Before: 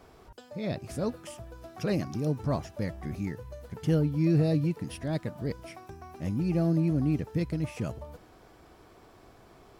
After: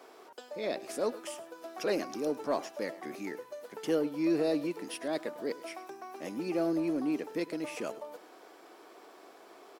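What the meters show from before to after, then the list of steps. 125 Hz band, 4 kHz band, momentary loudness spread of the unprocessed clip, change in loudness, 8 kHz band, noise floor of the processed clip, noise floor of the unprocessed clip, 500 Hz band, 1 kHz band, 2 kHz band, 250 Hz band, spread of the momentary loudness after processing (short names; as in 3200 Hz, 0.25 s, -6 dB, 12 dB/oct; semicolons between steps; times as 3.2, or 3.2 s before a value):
-22.0 dB, +2.0 dB, 18 LU, -4.5 dB, n/a, -55 dBFS, -56 dBFS, +1.5 dB, +2.0 dB, +2.0 dB, -4.0 dB, 24 LU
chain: HPF 310 Hz 24 dB/oct; in parallel at -8 dB: soft clip -32.5 dBFS, distortion -10 dB; on the sum: echo 0.103 s -18.5 dB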